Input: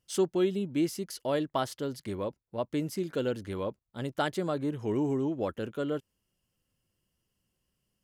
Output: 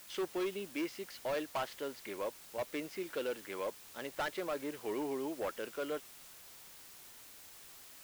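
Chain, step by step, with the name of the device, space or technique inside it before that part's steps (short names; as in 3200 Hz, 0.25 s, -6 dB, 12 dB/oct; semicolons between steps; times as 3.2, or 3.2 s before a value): drive-through speaker (BPF 470–3200 Hz; bell 2300 Hz +6.5 dB 0.77 oct; hard clip -30 dBFS, distortion -10 dB; white noise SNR 14 dB); gain -1.5 dB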